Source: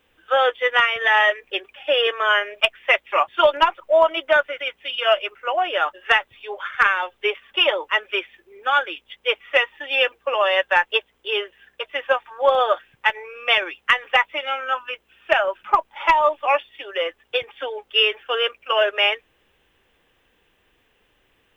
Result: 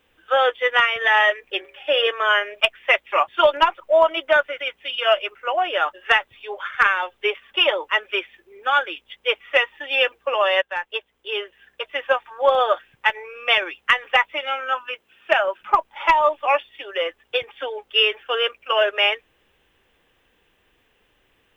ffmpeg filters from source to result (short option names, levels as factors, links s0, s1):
-filter_complex "[0:a]asettb=1/sr,asplit=3[s0][s1][s2];[s0]atrim=end=1.544[s3];[s1]atrim=start=1.54:end=2.07,asetpts=PTS-STARTPTS,afade=t=in:d=0.004:c=qsin,afade=t=out:st=0.526:d=0.004:c=qsin,bandreject=f=79.88:t=h:w=4,bandreject=f=159.76:t=h:w=4,bandreject=f=239.64:t=h:w=4,bandreject=f=319.52:t=h:w=4,bandreject=f=399.4:t=h:w=4,bandreject=f=479.28:t=h:w=4,bandreject=f=559.16:t=h:w=4,bandreject=f=639.04:t=h:w=4,bandreject=f=718.92:t=h:w=4,bandreject=f=798.8:t=h:w=4,bandreject=f=878.68:t=h:w=4,bandreject=f=958.56:t=h:w=4,bandreject=f=1038.44:t=h:w=4,bandreject=f=1118.32:t=h:w=4,bandreject=f=1198.2:t=h:w=4,bandreject=f=1278.08:t=h:w=4,bandreject=f=1357.96:t=h:w=4,bandreject=f=1437.84:t=h:w=4,bandreject=f=1517.72:t=h:w=4,bandreject=f=1597.6:t=h:w=4,bandreject=f=1677.48:t=h:w=4,bandreject=f=1757.36:t=h:w=4,bandreject=f=1837.24:t=h:w=4,bandreject=f=1917.12:t=h:w=4,bandreject=f=1997:t=h:w=4,bandreject=f=2076.88:t=h:w=4,bandreject=f=2156.76:t=h:w=4,bandreject=f=2236.64:t=h:w=4,bandreject=f=2316.52:t=h:w=4,bandreject=f=2396.4:t=h:w=4[s4];[s2]atrim=start=2.066[s5];[s3][s4]acrossfade=d=0.004:c1=hsin:c2=qsin[s6];[s6][s5]acrossfade=d=0.004:c1=qsin:c2=hsin,asettb=1/sr,asplit=3[s7][s8][s9];[s7]atrim=end=14.594[s10];[s8]atrim=start=14.59:end=15.61,asetpts=PTS-STARTPTS,afade=t=in:d=0.004:c=qsin,afade=t=out:st=1.016:d=0.004:c=qsin,highpass=110[s11];[s9]atrim=start=15.606[s12];[s10][s11]acrossfade=d=0.004:c1=hsin:c2=qsin[s13];[s13][s12]acrossfade=d=0.004:c1=qsin:c2=hsin,asplit=2[s14][s15];[s14]atrim=end=10.62,asetpts=PTS-STARTPTS,afade=t=out:st=10.616:d=0.004:c=hsin:silence=0.237137[s16];[s15]atrim=start=10.62,asetpts=PTS-STARTPTS,afade=t=in:d=1.2:silence=0.237137[s17];[s16][s17]concat=n=2:v=0:a=1"